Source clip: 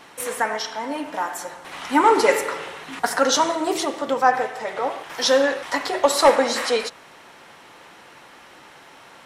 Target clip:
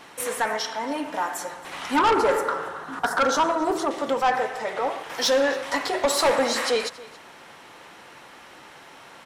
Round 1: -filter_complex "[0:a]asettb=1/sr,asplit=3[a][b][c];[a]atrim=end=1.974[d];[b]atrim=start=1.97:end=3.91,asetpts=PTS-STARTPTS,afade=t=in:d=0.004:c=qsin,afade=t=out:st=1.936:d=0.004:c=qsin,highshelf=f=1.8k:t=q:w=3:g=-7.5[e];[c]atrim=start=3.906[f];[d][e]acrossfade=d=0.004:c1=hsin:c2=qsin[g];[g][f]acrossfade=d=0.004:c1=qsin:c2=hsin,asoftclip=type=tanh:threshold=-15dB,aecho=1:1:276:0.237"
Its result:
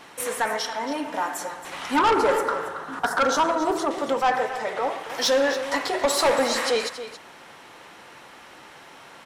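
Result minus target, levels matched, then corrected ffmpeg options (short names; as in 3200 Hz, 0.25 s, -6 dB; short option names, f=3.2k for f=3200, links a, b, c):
echo-to-direct +8 dB
-filter_complex "[0:a]asettb=1/sr,asplit=3[a][b][c];[a]atrim=end=1.974[d];[b]atrim=start=1.97:end=3.91,asetpts=PTS-STARTPTS,afade=t=in:d=0.004:c=qsin,afade=t=out:st=1.936:d=0.004:c=qsin,highshelf=f=1.8k:t=q:w=3:g=-7.5[e];[c]atrim=start=3.906[f];[d][e]acrossfade=d=0.004:c1=hsin:c2=qsin[g];[g][f]acrossfade=d=0.004:c1=qsin:c2=hsin,asoftclip=type=tanh:threshold=-15dB,aecho=1:1:276:0.0944"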